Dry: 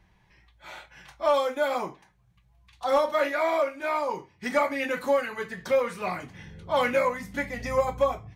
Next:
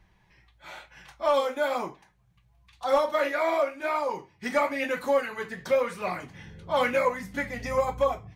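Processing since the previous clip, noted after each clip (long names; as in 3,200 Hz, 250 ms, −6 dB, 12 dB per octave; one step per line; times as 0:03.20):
flanger 1 Hz, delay 0.7 ms, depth 8.8 ms, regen +76%
level +4 dB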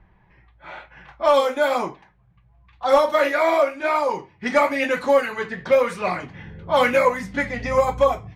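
low-pass that shuts in the quiet parts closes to 1,700 Hz, open at −23 dBFS
level +7 dB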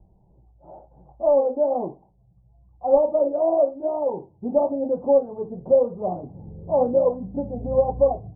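Butterworth low-pass 790 Hz 48 dB per octave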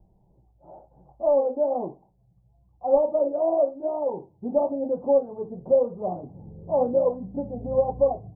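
parametric band 66 Hz −5.5 dB 0.69 octaves
level −2.5 dB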